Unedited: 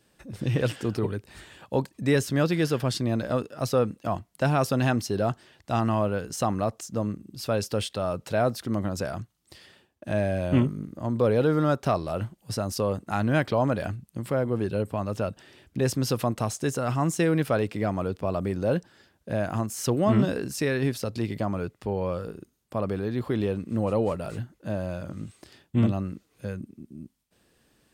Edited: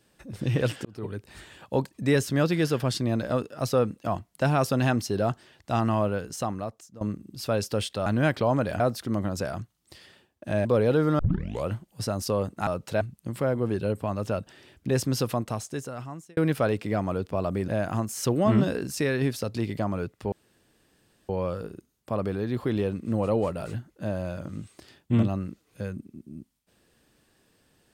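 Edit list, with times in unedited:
0:00.85–0:01.29: fade in
0:06.08–0:07.01: fade out, to −19.5 dB
0:08.06–0:08.40: swap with 0:13.17–0:13.91
0:10.25–0:11.15: remove
0:11.69: tape start 0.49 s
0:16.04–0:17.27: fade out
0:18.58–0:19.29: remove
0:21.93: splice in room tone 0.97 s

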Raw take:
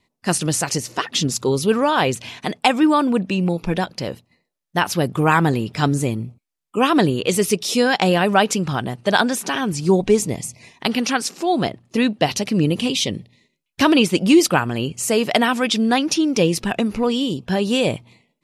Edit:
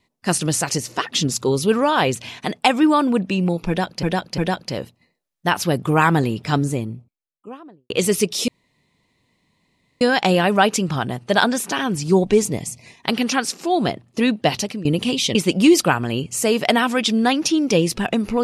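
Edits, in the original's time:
0:03.68–0:04.03: repeat, 3 plays
0:05.58–0:07.20: fade out and dull
0:07.78: splice in room tone 1.53 s
0:12.35–0:12.62: fade out, to −18.5 dB
0:13.12–0:14.01: remove

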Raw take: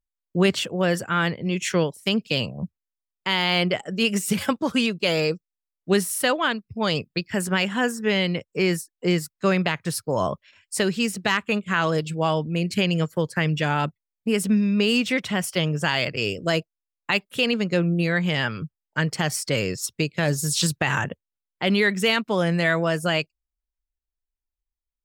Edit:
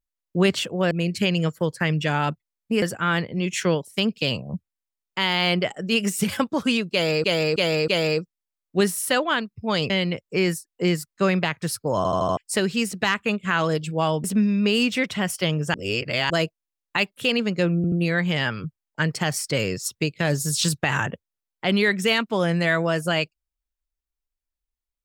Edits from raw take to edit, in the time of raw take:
0:05.01–0:05.33: repeat, 4 plays
0:07.03–0:08.13: remove
0:10.20: stutter in place 0.08 s, 5 plays
0:12.47–0:14.38: move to 0:00.91
0:15.88–0:16.44: reverse
0:17.90: stutter 0.08 s, 3 plays

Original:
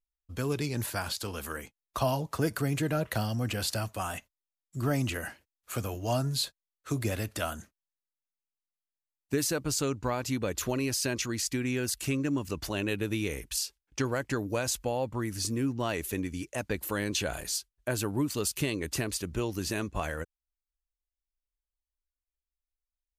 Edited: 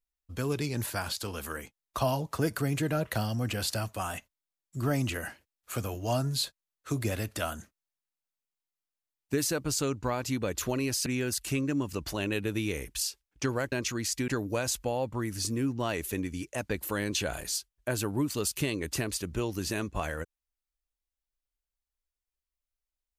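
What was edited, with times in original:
0:11.06–0:11.62: move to 0:14.28

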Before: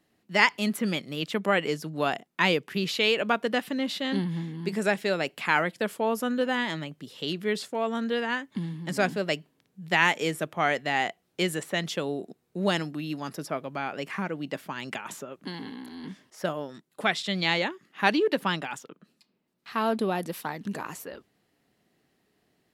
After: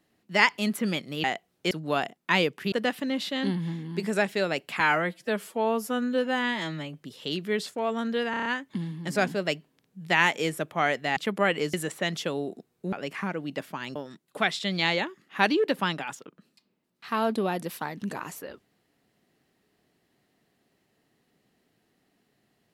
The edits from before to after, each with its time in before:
0:01.24–0:01.81: swap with 0:10.98–0:11.45
0:02.82–0:03.41: remove
0:05.49–0:06.94: time-stretch 1.5×
0:08.27: stutter 0.03 s, 6 plays
0:12.64–0:13.88: remove
0:14.91–0:16.59: remove

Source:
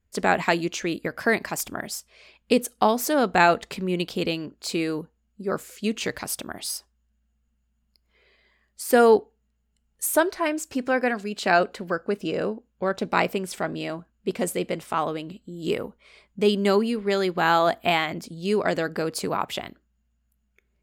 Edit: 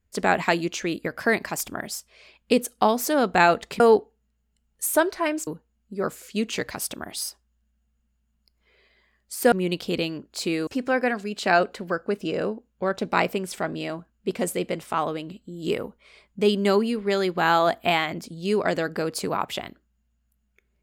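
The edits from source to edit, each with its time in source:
0:03.80–0:04.95: swap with 0:09.00–0:10.67

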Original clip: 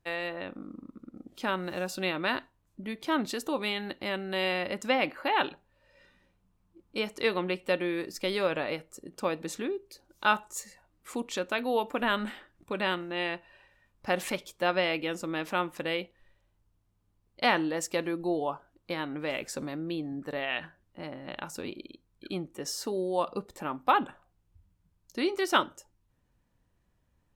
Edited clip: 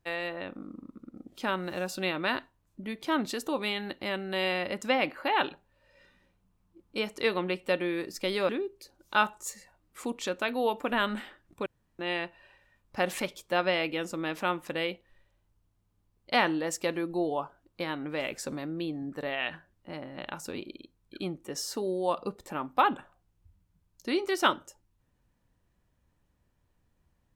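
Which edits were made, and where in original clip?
0:08.49–0:09.59: remove
0:12.76–0:13.09: fill with room tone

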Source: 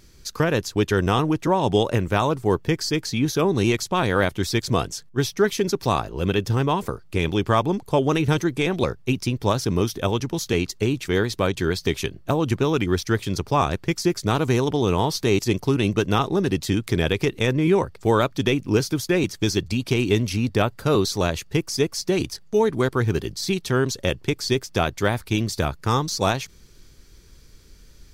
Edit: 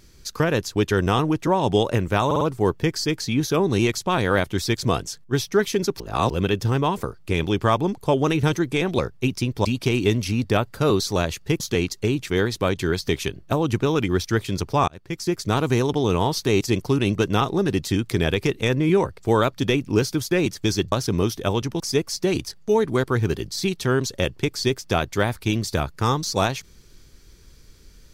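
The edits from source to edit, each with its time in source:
0:02.26: stutter 0.05 s, 4 plays
0:05.85–0:06.15: reverse
0:09.50–0:10.38: swap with 0:19.70–0:21.65
0:13.66–0:14.42: fade in equal-power

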